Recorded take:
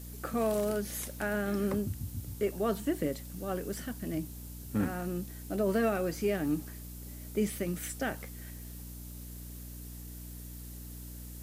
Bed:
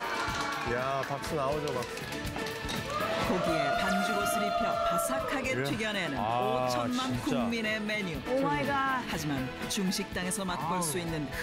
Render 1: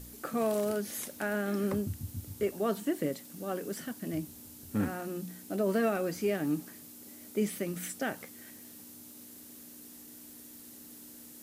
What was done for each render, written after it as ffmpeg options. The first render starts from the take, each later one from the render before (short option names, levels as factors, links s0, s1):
-af "bandreject=f=60:t=h:w=4,bandreject=f=120:t=h:w=4,bandreject=f=180:t=h:w=4"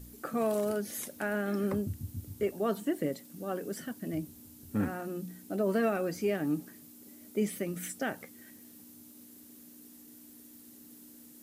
-af "afftdn=nr=6:nf=-51"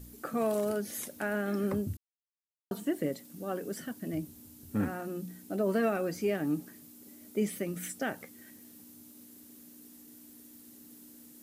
-filter_complex "[0:a]asplit=3[s0][s1][s2];[s0]atrim=end=1.97,asetpts=PTS-STARTPTS,afade=t=out:st=1.966:d=0.004:c=hsin[s3];[s1]atrim=start=1.97:end=2.71,asetpts=PTS-STARTPTS,volume=0[s4];[s2]atrim=start=2.71,asetpts=PTS-STARTPTS,afade=t=in:d=0.004:c=hsin[s5];[s3][s4][s5]concat=n=3:v=0:a=1"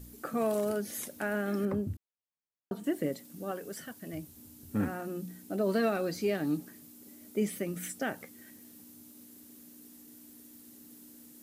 -filter_complex "[0:a]asettb=1/sr,asplit=3[s0][s1][s2];[s0]atrim=end=1.654[s3];[s1]atrim=start=1.65:end=2.84,asetpts=PTS-STARTPTS,afade=t=in:d=0.004:c=qsin,afade=t=out:st=1.186:d=0.004:c=qsin,highshelf=f=3000:g=-11[s4];[s2]atrim=start=2.836[s5];[s3][s4]acrossfade=d=0.004:c1=hsin:c2=qsin[s6];[s6][s5]acrossfade=d=0.004:c1=qsin:c2=hsin,asettb=1/sr,asplit=3[s7][s8][s9];[s7]atrim=end=3.514[s10];[s8]atrim=start=3.51:end=4.37,asetpts=PTS-STARTPTS,afade=t=in:d=0.004:c=qsin,afade=t=out:st=0.856:d=0.004:c=qsin,equalizer=f=250:w=0.85:g=-7.5[s11];[s9]atrim=start=4.366[s12];[s10][s11]acrossfade=d=0.004:c1=hsin:c2=qsin[s13];[s13][s12]acrossfade=d=0.004:c1=qsin:c2=hsin,asettb=1/sr,asplit=3[s14][s15][s16];[s14]atrim=end=5.614[s17];[s15]atrim=start=5.61:end=6.57,asetpts=PTS-STARTPTS,afade=t=in:d=0.004:c=qsin,afade=t=out:st=0.956:d=0.004:c=qsin,equalizer=f=4100:w=3.7:g=11.5[s18];[s16]atrim=start=6.566[s19];[s17][s18]acrossfade=d=0.004:c1=hsin:c2=qsin[s20];[s20][s19]acrossfade=d=0.004:c1=qsin:c2=hsin"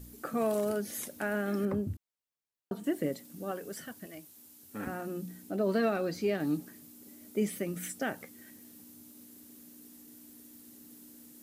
-filter_complex "[0:a]asettb=1/sr,asplit=3[s0][s1][s2];[s0]atrim=end=4.064[s3];[s1]atrim=start=4.06:end=4.87,asetpts=PTS-STARTPTS,afade=t=in:d=0.004:c=qsin,afade=t=out:st=0.806:d=0.004:c=qsin,highpass=f=740:p=1[s4];[s2]atrim=start=4.866[s5];[s3][s4]acrossfade=d=0.004:c1=hsin:c2=qsin[s6];[s6][s5]acrossfade=d=0.004:c1=qsin:c2=hsin,asettb=1/sr,asplit=3[s7][s8][s9];[s7]atrim=end=5.504[s10];[s8]atrim=start=5.5:end=6.4,asetpts=PTS-STARTPTS,afade=t=in:d=0.004:c=qsin,afade=t=out:st=0.896:d=0.004:c=qsin,equalizer=f=11000:w=0.5:g=-5.5[s11];[s9]atrim=start=6.396[s12];[s10][s11]acrossfade=d=0.004:c1=hsin:c2=qsin[s13];[s13][s12]acrossfade=d=0.004:c1=qsin:c2=hsin"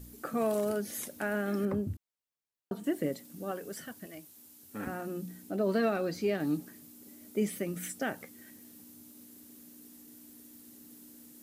-af anull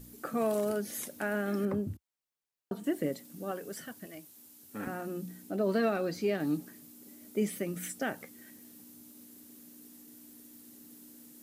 -af "equalizer=f=69:w=2.8:g=-10.5"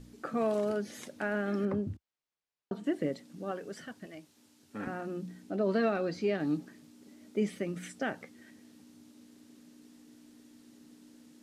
-af "lowpass=5200"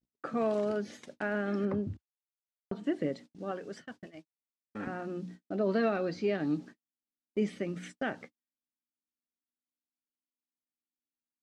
-af "lowpass=6400,agate=range=0.00282:threshold=0.00501:ratio=16:detection=peak"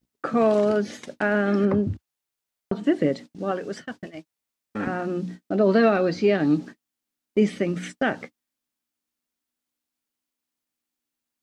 -af "volume=3.35"